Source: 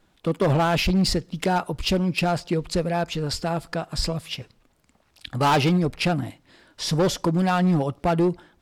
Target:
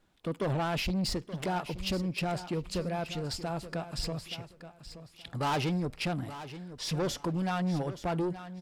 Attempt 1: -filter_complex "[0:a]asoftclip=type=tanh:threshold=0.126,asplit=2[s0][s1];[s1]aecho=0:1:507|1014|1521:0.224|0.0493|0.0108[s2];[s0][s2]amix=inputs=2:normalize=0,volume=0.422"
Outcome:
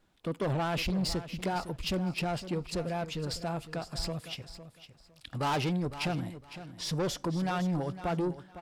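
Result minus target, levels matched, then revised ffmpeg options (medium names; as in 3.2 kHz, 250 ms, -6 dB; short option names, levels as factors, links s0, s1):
echo 369 ms early
-filter_complex "[0:a]asoftclip=type=tanh:threshold=0.126,asplit=2[s0][s1];[s1]aecho=0:1:876|1752|2628:0.224|0.0493|0.0108[s2];[s0][s2]amix=inputs=2:normalize=0,volume=0.422"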